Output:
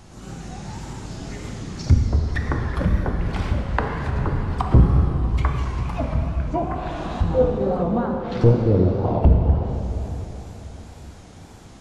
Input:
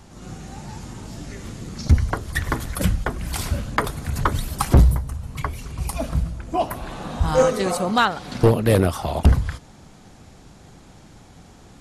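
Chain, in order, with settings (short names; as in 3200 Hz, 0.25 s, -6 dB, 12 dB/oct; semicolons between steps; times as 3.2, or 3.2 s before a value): treble ducked by the level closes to 460 Hz, closed at -17 dBFS; plate-style reverb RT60 3.9 s, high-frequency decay 0.95×, DRR 1 dB; wow and flutter 83 cents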